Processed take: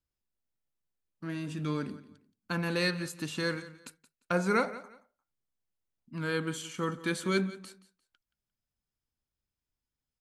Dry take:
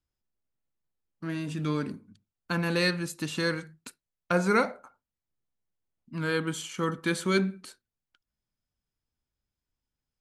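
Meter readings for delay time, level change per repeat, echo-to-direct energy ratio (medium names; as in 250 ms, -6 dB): 175 ms, -12.0 dB, -17.0 dB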